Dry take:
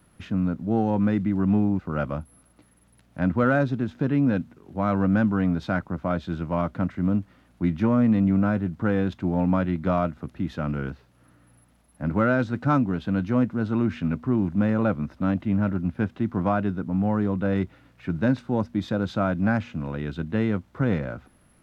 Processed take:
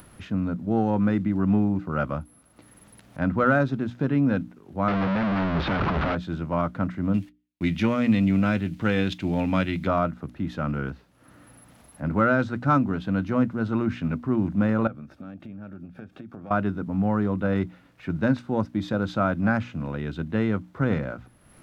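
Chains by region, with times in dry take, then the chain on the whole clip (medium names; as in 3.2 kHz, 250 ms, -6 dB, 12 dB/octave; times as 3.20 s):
4.88–6.15 s: one-bit comparator + Gaussian low-pass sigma 2.8 samples
7.14–9.87 s: gate -50 dBFS, range -40 dB + resonant high shelf 1.8 kHz +10.5 dB, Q 1.5
14.87–16.51 s: compression 16:1, threshold -34 dBFS + comb of notches 1 kHz
whole clip: hum notches 60/120/180/240/300 Hz; dynamic bell 1.3 kHz, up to +4 dB, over -41 dBFS, Q 2.9; upward compressor, threshold -41 dBFS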